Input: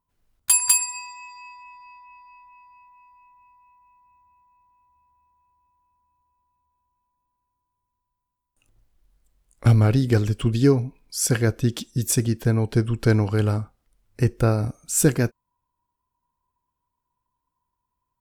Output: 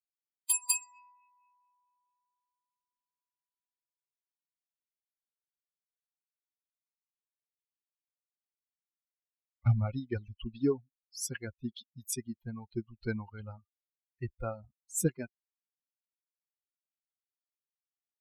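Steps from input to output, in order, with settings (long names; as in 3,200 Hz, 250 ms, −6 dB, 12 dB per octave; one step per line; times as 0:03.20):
spectral dynamics exaggerated over time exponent 3
level −7.5 dB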